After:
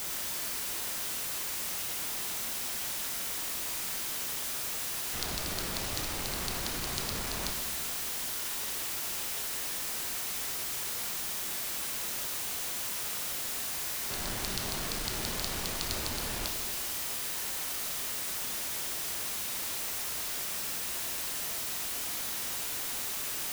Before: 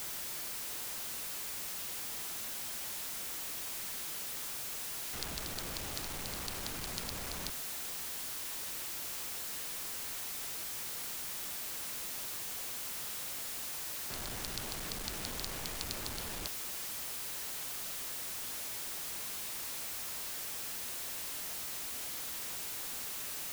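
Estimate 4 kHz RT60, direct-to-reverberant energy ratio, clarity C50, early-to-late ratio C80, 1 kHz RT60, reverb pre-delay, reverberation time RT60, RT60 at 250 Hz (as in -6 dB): 1.4 s, 2.0 dB, 4.0 dB, 5.5 dB, 1.6 s, 16 ms, 1.6 s, 1.5 s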